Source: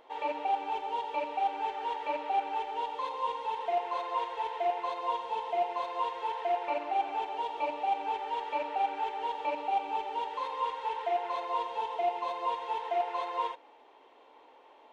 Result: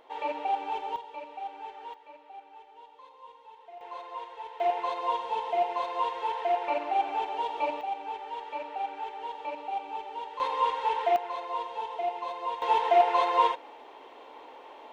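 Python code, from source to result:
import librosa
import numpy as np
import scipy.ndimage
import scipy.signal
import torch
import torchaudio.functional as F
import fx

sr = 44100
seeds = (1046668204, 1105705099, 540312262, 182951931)

y = fx.gain(x, sr, db=fx.steps((0.0, 1.0), (0.96, -8.0), (1.94, -17.0), (3.81, -7.0), (4.6, 3.0), (7.81, -3.5), (10.4, 6.0), (11.16, -1.0), (12.62, 9.5)))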